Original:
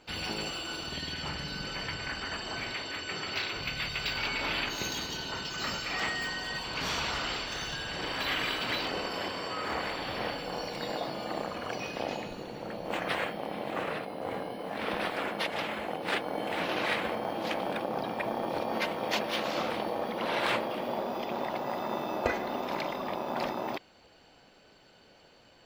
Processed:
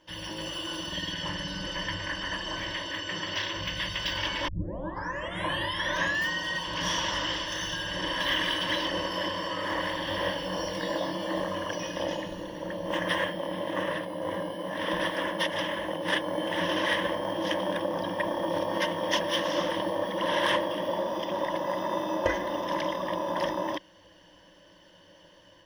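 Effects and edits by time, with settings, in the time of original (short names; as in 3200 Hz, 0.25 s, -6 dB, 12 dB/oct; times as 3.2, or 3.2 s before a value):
4.48 tape start 1.81 s
10.05–11.63 doubler 21 ms -5 dB
whole clip: ripple EQ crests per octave 1.2, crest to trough 15 dB; AGC gain up to 6 dB; gain -5.5 dB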